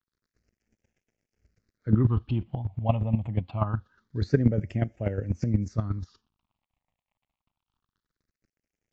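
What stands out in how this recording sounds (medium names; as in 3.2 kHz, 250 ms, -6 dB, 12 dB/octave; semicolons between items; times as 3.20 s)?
a quantiser's noise floor 12-bit, dither none; phasing stages 6, 0.25 Hz, lowest notch 390–1100 Hz; chopped level 8.3 Hz, depth 65%, duty 15%; AAC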